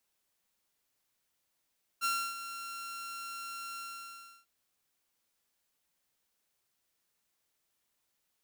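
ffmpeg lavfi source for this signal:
-f lavfi -i "aevalsrc='0.0531*(2*mod(1370*t,1)-1)':d=2.446:s=44100,afade=t=in:d=0.035,afade=t=out:st=0.035:d=0.295:silence=0.251,afade=t=out:st=1.77:d=0.676"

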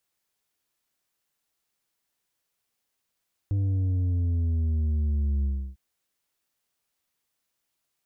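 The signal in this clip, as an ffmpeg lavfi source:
-f lavfi -i "aevalsrc='0.0708*clip((2.25-t)/0.32,0,1)*tanh(2*sin(2*PI*100*2.25/log(65/100)*(exp(log(65/100)*t/2.25)-1)))/tanh(2)':d=2.25:s=44100"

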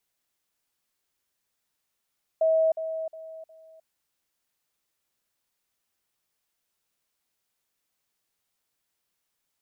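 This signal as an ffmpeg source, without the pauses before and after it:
-f lavfi -i "aevalsrc='pow(10,(-18.5-10*floor(t/0.36))/20)*sin(2*PI*643*t)*clip(min(mod(t,0.36),0.31-mod(t,0.36))/0.005,0,1)':d=1.44:s=44100"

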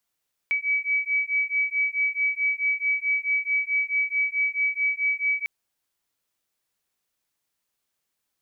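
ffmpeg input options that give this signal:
-f lavfi -i "aevalsrc='0.0562*(sin(2*PI*2280*t)+sin(2*PI*2284.6*t))':d=4.95:s=44100"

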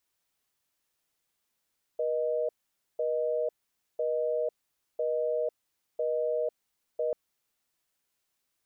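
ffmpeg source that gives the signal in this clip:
-f lavfi -i "aevalsrc='0.0355*(sin(2*PI*480*t)+sin(2*PI*620*t))*clip(min(mod(t,1),0.5-mod(t,1))/0.005,0,1)':d=5.14:s=44100"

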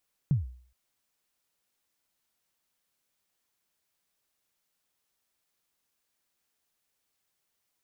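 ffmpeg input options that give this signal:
-f lavfi -i "aevalsrc='0.126*pow(10,-3*t/0.5)*sin(2*PI*(160*0.145/log(62/160)*(exp(log(62/160)*min(t,0.145)/0.145)-1)+62*max(t-0.145,0)))':d=0.42:s=44100"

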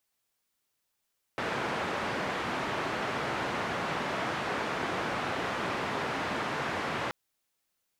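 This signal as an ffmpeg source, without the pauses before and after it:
-f lavfi -i "anoisesrc=c=white:d=5.73:r=44100:seed=1,highpass=f=110,lowpass=f=1500,volume=-16.2dB"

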